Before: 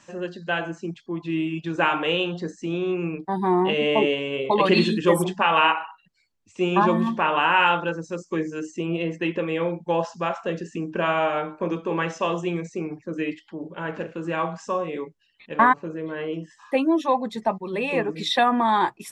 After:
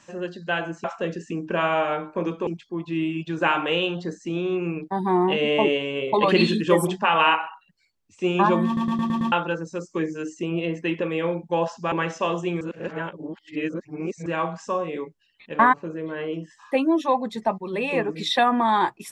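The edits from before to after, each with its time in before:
7.03 stutter in place 0.11 s, 6 plays
10.29–11.92 move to 0.84
12.61–14.26 reverse

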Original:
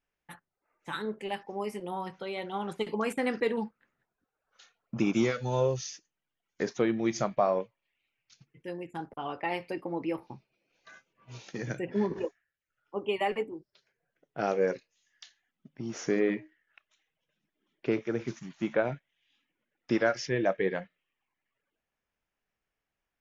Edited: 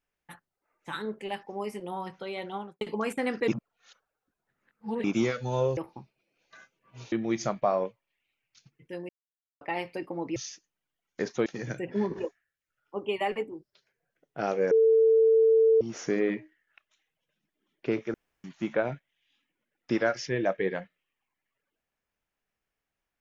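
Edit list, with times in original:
2.49–2.81 studio fade out
3.48–5.04 reverse
5.77–6.87 swap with 10.11–11.46
8.84–9.36 mute
14.71–15.81 bleep 447 Hz -17 dBFS
18.14–18.44 room tone

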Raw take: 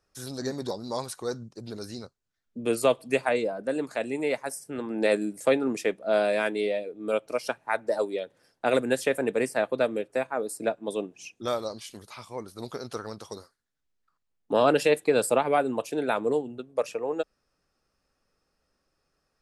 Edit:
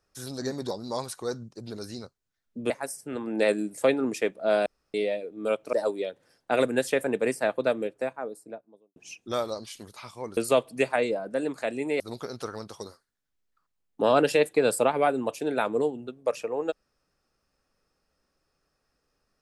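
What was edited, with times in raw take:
2.7–4.33 move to 12.51
6.29–6.57 room tone
7.36–7.87 cut
9.79–11.1 studio fade out

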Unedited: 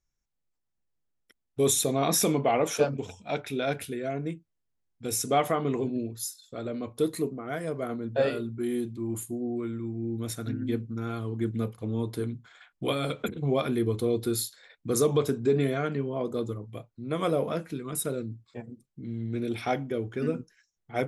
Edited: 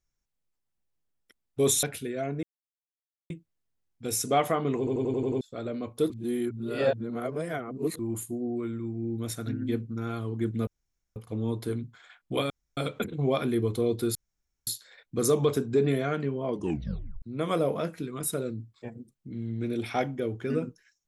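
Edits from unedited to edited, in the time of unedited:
1.83–3.7 cut
4.3 insert silence 0.87 s
5.78 stutter in place 0.09 s, 7 plays
7.1–8.99 reverse
11.67 insert room tone 0.49 s
13.01 insert room tone 0.27 s
14.39 insert room tone 0.52 s
16.21 tape stop 0.73 s

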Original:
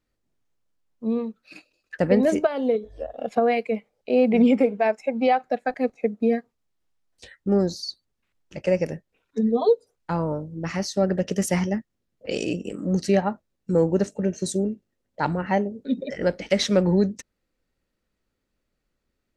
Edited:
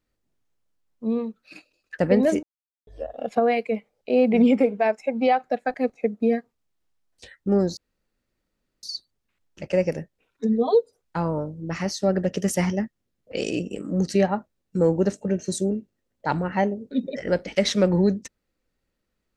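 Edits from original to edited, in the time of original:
2.43–2.87 mute
7.77 insert room tone 1.06 s

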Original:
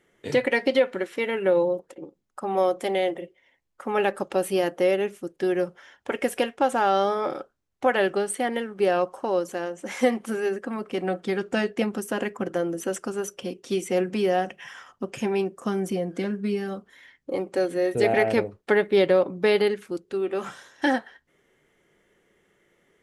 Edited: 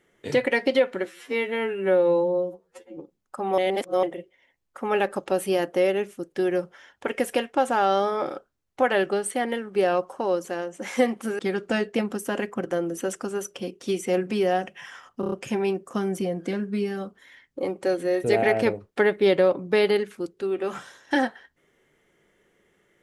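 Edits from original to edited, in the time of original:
1.05–2.01 stretch 2×
2.62–3.07 reverse
10.43–11.22 cut
15.03 stutter 0.03 s, 5 plays

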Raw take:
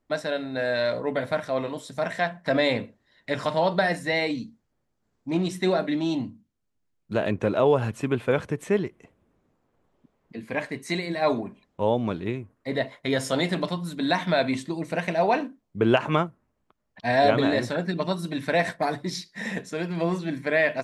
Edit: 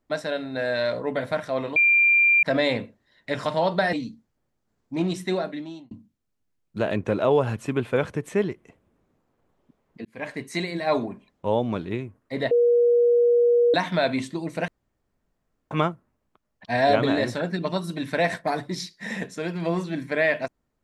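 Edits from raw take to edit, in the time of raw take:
1.76–2.43 bleep 2380 Hz -14.5 dBFS
3.93–4.28 cut
5.49–6.26 fade out
10.4–10.71 fade in
12.86–14.09 bleep 478 Hz -15 dBFS
15.03–16.06 room tone

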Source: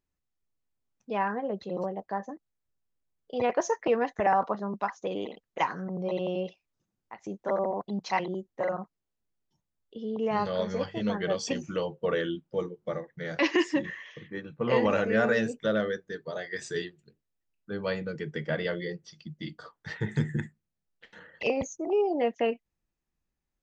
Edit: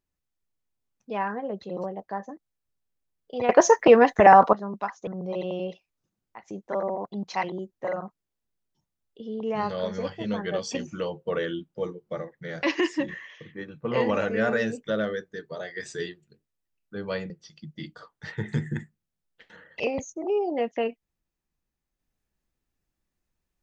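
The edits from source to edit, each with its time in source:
3.49–4.53 gain +11 dB
5.07–5.83 cut
18.06–18.93 cut

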